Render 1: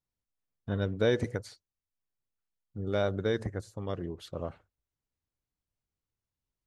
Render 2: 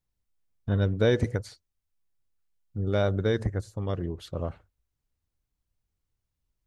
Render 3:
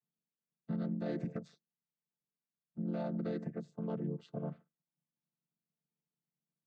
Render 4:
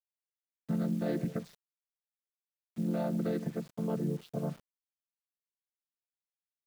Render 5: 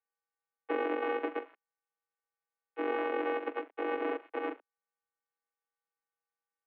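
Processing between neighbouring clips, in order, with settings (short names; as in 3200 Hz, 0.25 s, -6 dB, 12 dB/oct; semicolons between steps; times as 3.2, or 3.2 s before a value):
low shelf 91 Hz +12 dB; gain +2.5 dB
chord vocoder minor triad, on D3; limiter -23 dBFS, peak gain reduction 10.5 dB; gain -6 dB
requantised 10-bit, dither none; gain +5 dB
sample sorter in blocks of 128 samples; mistuned SSB +130 Hz 160–2500 Hz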